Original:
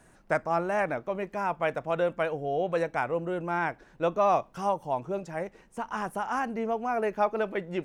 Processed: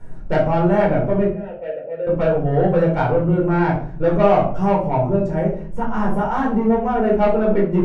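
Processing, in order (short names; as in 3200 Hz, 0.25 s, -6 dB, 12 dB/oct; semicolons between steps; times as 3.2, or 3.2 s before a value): tilt -3.5 dB/oct; soft clip -19.5 dBFS, distortion -15 dB; 1.29–2.07 vowel filter e; shoebox room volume 450 m³, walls furnished, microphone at 4.5 m; gain +1.5 dB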